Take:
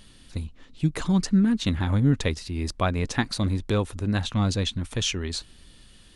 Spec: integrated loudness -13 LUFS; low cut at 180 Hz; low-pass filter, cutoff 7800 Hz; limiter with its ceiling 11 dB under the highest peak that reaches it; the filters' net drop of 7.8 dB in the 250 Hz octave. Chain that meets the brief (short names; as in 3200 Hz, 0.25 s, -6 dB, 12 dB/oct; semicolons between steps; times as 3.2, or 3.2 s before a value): HPF 180 Hz; LPF 7800 Hz; bell 250 Hz -8 dB; gain +19.5 dB; limiter 0 dBFS